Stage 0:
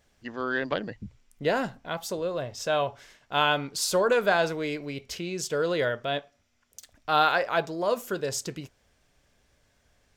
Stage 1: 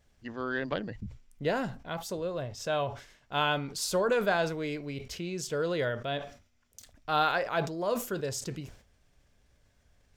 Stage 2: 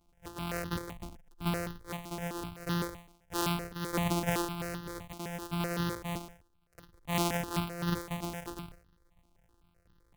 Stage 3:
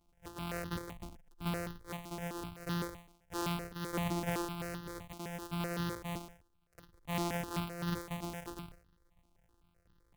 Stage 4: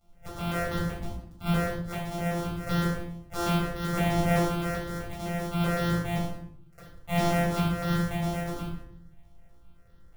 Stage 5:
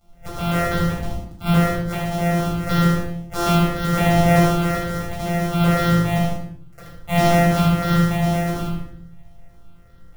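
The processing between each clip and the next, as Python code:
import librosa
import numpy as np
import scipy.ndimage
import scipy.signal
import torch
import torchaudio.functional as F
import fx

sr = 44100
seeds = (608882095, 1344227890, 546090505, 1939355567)

y1 = fx.low_shelf(x, sr, hz=170.0, db=8.5)
y1 = fx.sustainer(y1, sr, db_per_s=120.0)
y1 = y1 * 10.0 ** (-5.0 / 20.0)
y2 = np.r_[np.sort(y1[:len(y1) // 256 * 256].reshape(-1, 256), axis=1).ravel(), y1[len(y1) // 256 * 256:]]
y2 = fx.phaser_held(y2, sr, hz=7.8, low_hz=470.0, high_hz=2300.0)
y3 = 10.0 ** (-23.5 / 20.0) * np.tanh(y2 / 10.0 ** (-23.5 / 20.0))
y3 = y3 * 10.0 ** (-3.0 / 20.0)
y4 = fx.room_shoebox(y3, sr, seeds[0], volume_m3=960.0, walls='furnished', distance_m=6.9)
y5 = y4 + 10.0 ** (-4.5 / 20.0) * np.pad(y4, (int(77 * sr / 1000.0), 0))[:len(y4)]
y5 = y5 * 10.0 ** (7.5 / 20.0)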